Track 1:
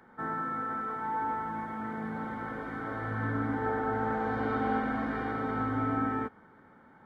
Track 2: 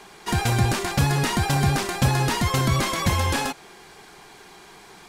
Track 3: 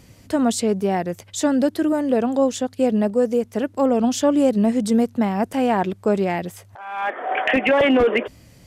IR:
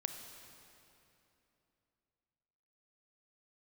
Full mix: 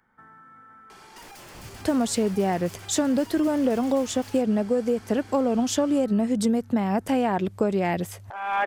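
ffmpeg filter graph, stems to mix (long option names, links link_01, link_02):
-filter_complex "[0:a]equalizer=frequency=420:width_type=o:width=2.9:gain=-12.5,acompressor=threshold=-44dB:ratio=6,volume=-3.5dB[link_01];[1:a]aeval=exprs='0.0531*(abs(mod(val(0)/0.0531+3,4)-2)-1)':channel_layout=same,equalizer=frequency=4400:width=1.5:gain=4.5,asoftclip=type=tanh:threshold=-33.5dB,adelay=900,volume=-2.5dB[link_02];[2:a]lowshelf=frequency=75:gain=8,acompressor=threshold=-21dB:ratio=6,adelay=1550,volume=1.5dB[link_03];[link_01][link_02]amix=inputs=2:normalize=0,equalizer=frequency=3900:width=6.4:gain=-7.5,acompressor=threshold=-45dB:ratio=4,volume=0dB[link_04];[link_03][link_04]amix=inputs=2:normalize=0"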